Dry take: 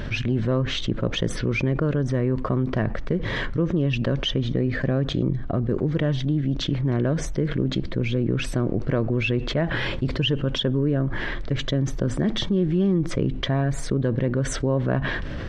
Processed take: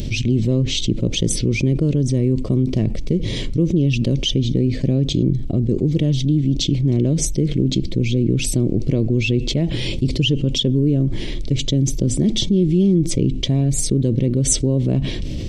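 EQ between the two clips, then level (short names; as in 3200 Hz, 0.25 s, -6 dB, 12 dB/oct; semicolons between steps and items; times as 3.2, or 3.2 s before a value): EQ curve 340 Hz 0 dB, 1600 Hz -27 dB, 2200 Hz -6 dB, 8400 Hz +12 dB; +6.0 dB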